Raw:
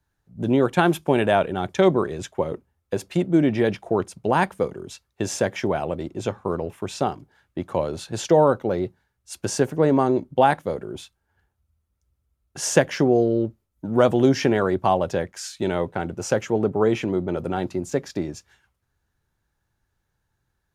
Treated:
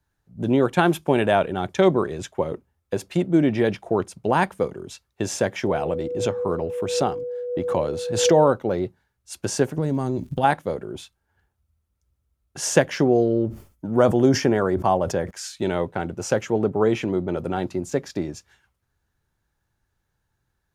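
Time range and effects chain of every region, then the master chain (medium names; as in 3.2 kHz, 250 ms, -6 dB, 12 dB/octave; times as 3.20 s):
5.67–8.48 s: whistle 490 Hz -27 dBFS + swell ahead of each attack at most 58 dB/s
9.77–10.43 s: tone controls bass +14 dB, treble +14 dB + compression 3:1, threshold -23 dBFS + crackle 92 per s -47 dBFS
13.30–15.31 s: dynamic bell 2.8 kHz, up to -6 dB, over -42 dBFS, Q 1.3 + band-stop 3.9 kHz, Q 9.1 + decay stretcher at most 140 dB/s
whole clip: none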